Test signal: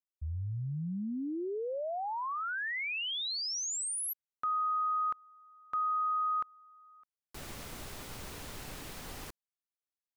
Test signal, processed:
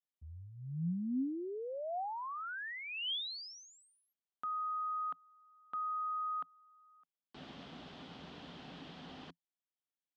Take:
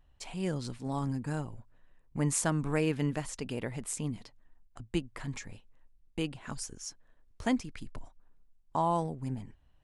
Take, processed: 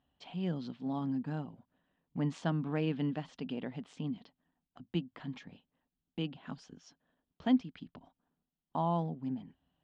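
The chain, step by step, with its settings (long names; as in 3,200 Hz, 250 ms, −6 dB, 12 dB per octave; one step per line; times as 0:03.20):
loudspeaker in its box 100–4,300 Hz, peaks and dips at 110 Hz −9 dB, 170 Hz +9 dB, 260 Hz +9 dB, 730 Hz +5 dB, 2,200 Hz −4 dB, 3,200 Hz +7 dB
level −6.5 dB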